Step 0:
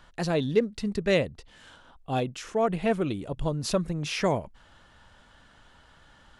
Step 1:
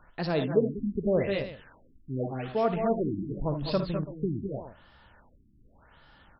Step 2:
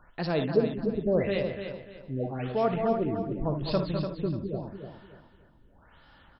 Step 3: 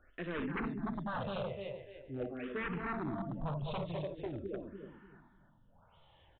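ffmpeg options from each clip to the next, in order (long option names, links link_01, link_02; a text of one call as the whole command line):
ffmpeg -i in.wav -filter_complex "[0:a]asplit=2[link_01][link_02];[link_02]aecho=0:1:57|75|78|201|216|332:0.282|0.15|0.211|0.316|0.398|0.126[link_03];[link_01][link_03]amix=inputs=2:normalize=0,afftfilt=real='re*lt(b*sr/1024,350*pow(5600/350,0.5+0.5*sin(2*PI*0.86*pts/sr)))':imag='im*lt(b*sr/1024,350*pow(5600/350,0.5+0.5*sin(2*PI*0.86*pts/sr)))':win_size=1024:overlap=0.75,volume=-2dB" out.wav
ffmpeg -i in.wav -af "aecho=1:1:295|590|885|1180:0.398|0.119|0.0358|0.0107" out.wav
ffmpeg -i in.wav -filter_complex "[0:a]aresample=8000,aeval=exprs='0.0531*(abs(mod(val(0)/0.0531+3,4)-2)-1)':channel_layout=same,aresample=44100,asplit=2[link_01][link_02];[link_02]afreqshift=-0.45[link_03];[link_01][link_03]amix=inputs=2:normalize=1,volume=-4dB" out.wav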